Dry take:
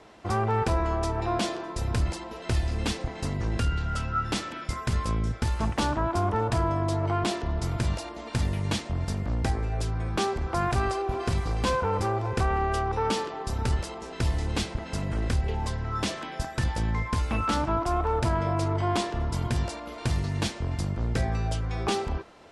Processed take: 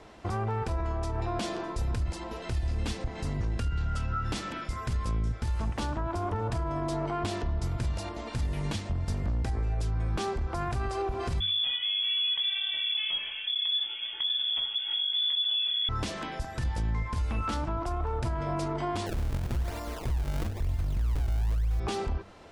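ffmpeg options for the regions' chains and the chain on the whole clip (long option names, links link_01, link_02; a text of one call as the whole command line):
ffmpeg -i in.wav -filter_complex "[0:a]asettb=1/sr,asplit=3[link_01][link_02][link_03];[link_01]atrim=end=11.404[link_04];[link_02]atrim=start=11.4:end=15.89,asetpts=PTS-STARTPTS,afade=type=in:duration=0.004:curve=qsin,afade=type=out:start_time=4.486:duration=0.004:curve=qsin,lowshelf=frequency=270:width_type=q:width=3:gain=10,flanger=delay=15.5:depth=5.5:speed=1.2,lowpass=frequency=3000:width_type=q:width=0.5098,lowpass=frequency=3000:width_type=q:width=0.6013,lowpass=frequency=3000:width_type=q:width=0.9,lowpass=frequency=3000:width_type=q:width=2.563,afreqshift=-3500[link_05];[link_03]atrim=start=15.886[link_06];[link_04][link_05]acrossfade=duration=0.004:curve1=hsin:curve2=qsin[link_07];[link_07][link_06]acrossfade=duration=0.004:curve1=qsin:curve2=hsin,asettb=1/sr,asplit=3[link_08][link_09][link_10];[link_08]atrim=end=19.064[link_11];[link_09]atrim=start=19.06:end=21.8,asetpts=PTS-STARTPTS,afade=type=in:duration=0.004:curve=qsin,afade=type=out:start_time=2.736:duration=0.004:curve=qsin,asubboost=boost=8.5:cutoff=69,acrusher=samples=34:mix=1:aa=0.000001:lfo=1:lforange=54.4:lforate=1[link_12];[link_10]atrim=start=21.796[link_13];[link_11][link_12]acrossfade=duration=0.004:curve1=hsin:curve2=qsin[link_14];[link_14][link_13]acrossfade=duration=0.004:curve1=qsin:curve2=hsin,lowshelf=frequency=90:gain=9.5,bandreject=frequency=97.85:width_type=h:width=4,bandreject=frequency=195.7:width_type=h:width=4,alimiter=limit=-22.5dB:level=0:latency=1:release=151" out.wav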